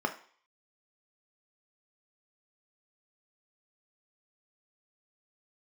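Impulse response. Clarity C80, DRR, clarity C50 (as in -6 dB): 17.5 dB, 5.0 dB, 13.0 dB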